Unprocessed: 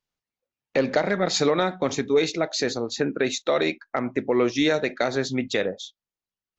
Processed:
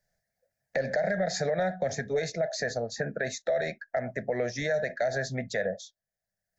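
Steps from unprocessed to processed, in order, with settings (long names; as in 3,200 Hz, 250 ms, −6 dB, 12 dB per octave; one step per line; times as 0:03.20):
drawn EQ curve 190 Hz 0 dB, 310 Hz −20 dB, 660 Hz +9 dB, 1,100 Hz −25 dB, 1,700 Hz +6 dB, 2,800 Hz −20 dB, 5,000 Hz −4 dB
brickwall limiter −18.5 dBFS, peak gain reduction 11.5 dB
multiband upward and downward compressor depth 40%
level −1 dB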